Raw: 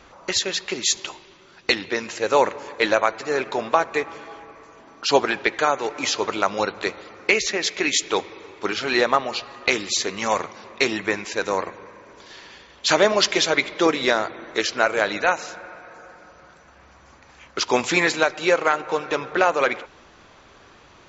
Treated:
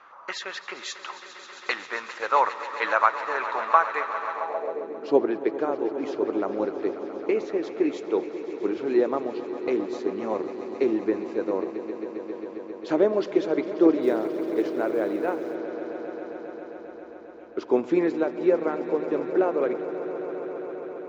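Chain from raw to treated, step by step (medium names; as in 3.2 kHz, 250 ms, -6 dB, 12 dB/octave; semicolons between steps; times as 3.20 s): echo with a slow build-up 134 ms, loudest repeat 5, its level -15.5 dB; band-pass sweep 1.2 kHz -> 330 Hz, 4.31–4.89 s; 14.02–15.55 s: companded quantiser 8-bit; trim +4 dB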